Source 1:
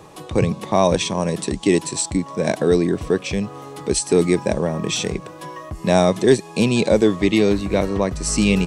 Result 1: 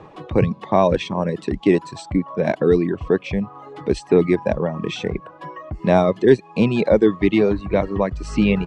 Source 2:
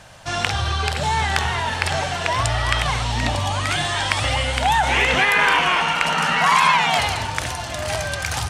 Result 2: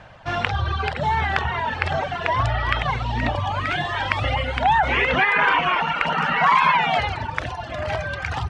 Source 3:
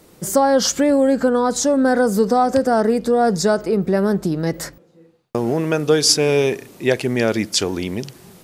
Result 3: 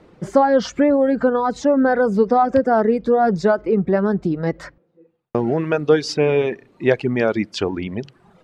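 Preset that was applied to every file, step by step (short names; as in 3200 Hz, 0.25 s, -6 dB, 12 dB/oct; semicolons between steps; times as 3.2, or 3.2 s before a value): LPF 2400 Hz 12 dB/oct; reverb removal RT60 0.96 s; gain +1.5 dB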